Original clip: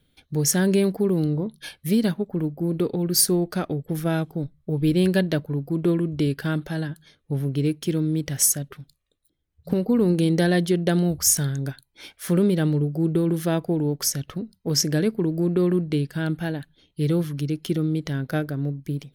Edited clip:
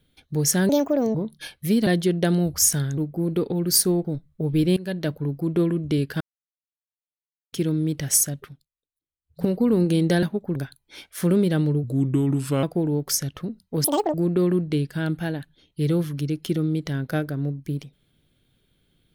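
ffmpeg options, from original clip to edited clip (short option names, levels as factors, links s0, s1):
-filter_complex "[0:a]asplit=17[s0][s1][s2][s3][s4][s5][s6][s7][s8][s9][s10][s11][s12][s13][s14][s15][s16];[s0]atrim=end=0.694[s17];[s1]atrim=start=0.69:end=1.36,asetpts=PTS-STARTPTS,asetrate=64827,aresample=44100[s18];[s2]atrim=start=1.356:end=2.082[s19];[s3]atrim=start=10.508:end=11.622[s20];[s4]atrim=start=2.408:end=3.482[s21];[s5]atrim=start=4.328:end=5.05,asetpts=PTS-STARTPTS,afade=t=out:st=0.718:d=0.004:c=hsin:silence=0.0794328[s22];[s6]atrim=start=5.05:end=6.49,asetpts=PTS-STARTPTS,afade=t=in:d=0.4:silence=0.0794328,afade=t=out:st=1.436:d=0.004:c=hsin[s23];[s7]atrim=start=6.49:end=7.81,asetpts=PTS-STARTPTS,volume=0[s24];[s8]atrim=start=7.81:end=8.94,asetpts=PTS-STARTPTS,afade=t=in:d=0.004:c=hsin,afade=t=out:st=0.93:d=0.2:silence=0.0841395[s25];[s9]atrim=start=8.94:end=9.51,asetpts=PTS-STARTPTS,volume=0.0841[s26];[s10]atrim=start=9.51:end=10.512,asetpts=PTS-STARTPTS,afade=t=in:d=0.2:silence=0.0841395[s27];[s11]atrim=start=2.078:end=2.412[s28];[s12]atrim=start=11.618:end=12.904[s29];[s13]atrim=start=12.9:end=13.56,asetpts=PTS-STARTPTS,asetrate=36603,aresample=44100,atrim=end_sample=35067,asetpts=PTS-STARTPTS[s30];[s14]atrim=start=13.556:end=14.774[s31];[s15]atrim=start=14.77:end=15.34,asetpts=PTS-STARTPTS,asetrate=84231,aresample=44100[s32];[s16]atrim=start=15.336[s33];[s17][s18]acrossfade=d=0.004:c1=hsin:c2=hsin[s34];[s34][s19]acrossfade=d=0.004:c1=hsin:c2=hsin[s35];[s35][s20]acrossfade=d=0.004:c1=hsin:c2=hsin[s36];[s36][s21]acrossfade=d=0.004:c1=hsin:c2=hsin[s37];[s22][s23][s24][s25][s26][s27]concat=n=6:v=0:a=1[s38];[s37][s38]acrossfade=d=0.004:c1=hsin:c2=hsin[s39];[s39][s28]acrossfade=d=0.004:c1=hsin:c2=hsin[s40];[s40][s29]acrossfade=d=0.004:c1=hsin:c2=hsin[s41];[s41][s30]acrossfade=d=0.004:c1=hsin:c2=hsin[s42];[s42][s31]acrossfade=d=0.004:c1=hsin:c2=hsin[s43];[s43][s32]acrossfade=d=0.004:c1=hsin:c2=hsin[s44];[s44][s33]acrossfade=d=0.004:c1=hsin:c2=hsin"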